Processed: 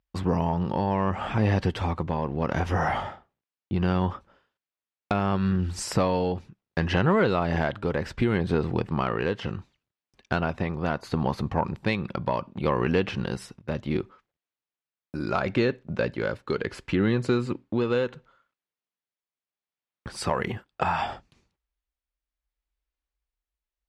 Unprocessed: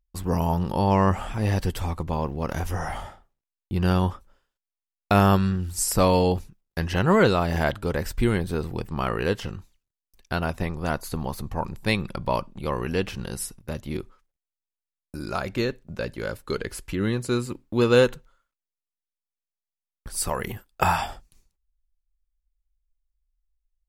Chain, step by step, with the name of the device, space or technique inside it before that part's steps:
AM radio (band-pass filter 100–3,400 Hz; downward compressor 6 to 1, threshold −25 dBFS, peak gain reduction 12 dB; soft clipping −15.5 dBFS, distortion −25 dB; amplitude tremolo 0.7 Hz, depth 35%)
level +7 dB

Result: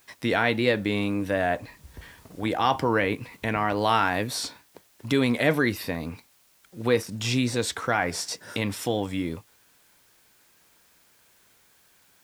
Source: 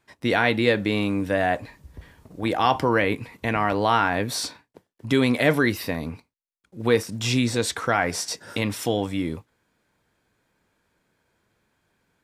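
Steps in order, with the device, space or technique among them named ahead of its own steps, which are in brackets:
0:03.77–0:04.28: high-shelf EQ 4,300 Hz +9.5 dB
noise-reduction cassette on a plain deck (one half of a high-frequency compander encoder only; tape wow and flutter; white noise bed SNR 34 dB)
level −2.5 dB

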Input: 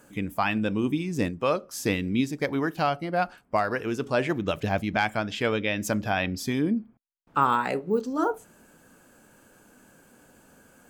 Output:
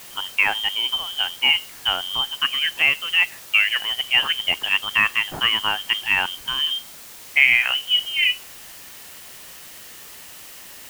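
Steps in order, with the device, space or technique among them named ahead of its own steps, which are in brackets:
scrambled radio voice (band-pass filter 370–2,700 Hz; voice inversion scrambler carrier 3,400 Hz; white noise bed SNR 18 dB)
level +7.5 dB

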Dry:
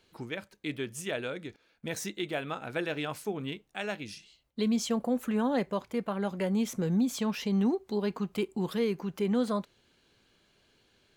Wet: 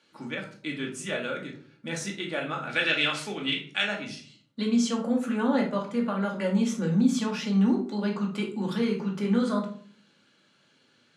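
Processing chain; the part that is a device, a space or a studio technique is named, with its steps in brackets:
high-pass filter 140 Hz
0:02.69–0:03.84: meter weighting curve D
car door speaker (loudspeaker in its box 110–9,500 Hz, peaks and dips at 350 Hz −5 dB, 700 Hz −4 dB, 1,400 Hz +5 dB)
rectangular room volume 450 cubic metres, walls furnished, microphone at 2.4 metres

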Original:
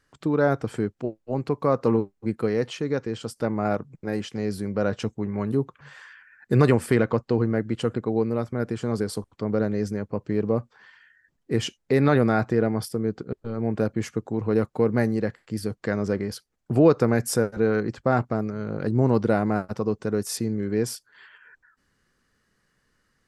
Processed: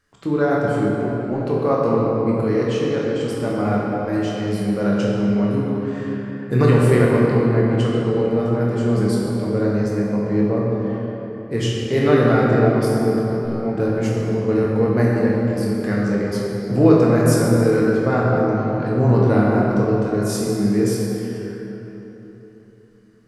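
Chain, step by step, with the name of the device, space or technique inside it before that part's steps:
tunnel (flutter between parallel walls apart 4.3 metres, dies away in 0.2 s; convolution reverb RT60 3.7 s, pre-delay 8 ms, DRR −4 dB)
level −1 dB

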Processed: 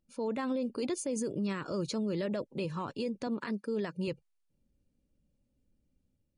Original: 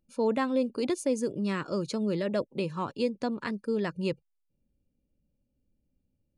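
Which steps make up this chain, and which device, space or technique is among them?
0:03.27–0:04.08: high-pass filter 160 Hz 12 dB per octave
low-bitrate web radio (automatic gain control gain up to 4 dB; brickwall limiter −23 dBFS, peak gain reduction 10.5 dB; level −2.5 dB; MP3 40 kbit/s 48,000 Hz)

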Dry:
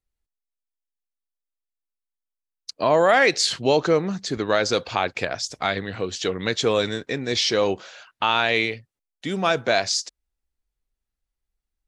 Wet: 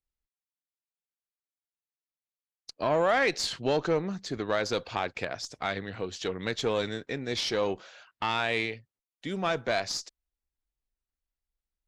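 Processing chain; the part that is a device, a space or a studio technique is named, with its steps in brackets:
tube preamp driven hard (tube saturation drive 11 dB, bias 0.4; high-shelf EQ 6,200 Hz −6 dB)
level −5.5 dB

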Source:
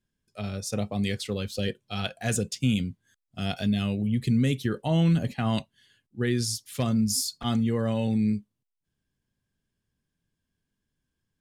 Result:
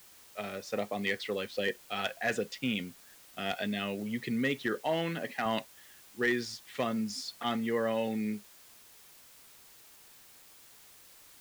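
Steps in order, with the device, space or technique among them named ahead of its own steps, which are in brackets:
drive-through speaker (band-pass filter 370–3,000 Hz; parametric band 1,900 Hz +9 dB 0.26 octaves; hard clipping −22.5 dBFS, distortion −23 dB; white noise bed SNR 21 dB)
0:04.81–0:05.46: high-pass filter 240 Hz 6 dB per octave
level +1 dB

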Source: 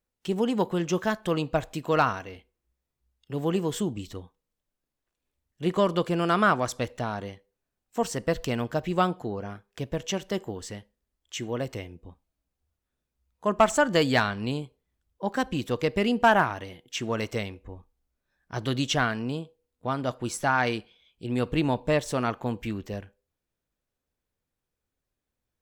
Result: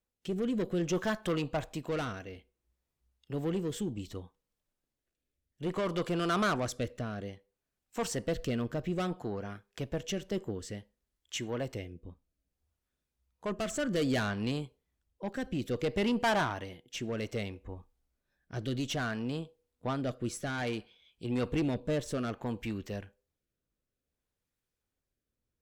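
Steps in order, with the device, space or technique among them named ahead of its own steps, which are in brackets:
overdriven rotary cabinet (tube saturation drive 24 dB, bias 0.25; rotating-speaker cabinet horn 0.6 Hz)

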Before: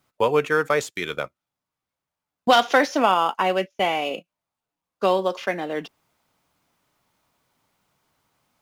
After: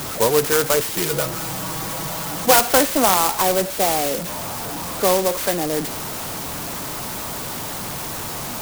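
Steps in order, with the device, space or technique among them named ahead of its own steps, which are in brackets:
early CD player with a faulty converter (converter with a step at zero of −23 dBFS; converter with an unsteady clock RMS 0.12 ms)
0:00.89–0:02.61: comb filter 6.2 ms, depth 58%
level +1 dB

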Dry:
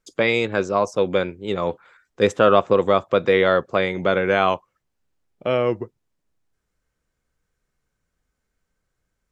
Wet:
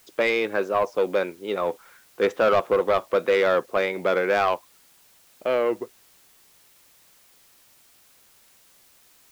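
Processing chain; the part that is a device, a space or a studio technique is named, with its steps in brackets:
tape answering machine (band-pass filter 310–3,300 Hz; soft clipping −13 dBFS, distortion −13 dB; tape wow and flutter; white noise bed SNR 31 dB)

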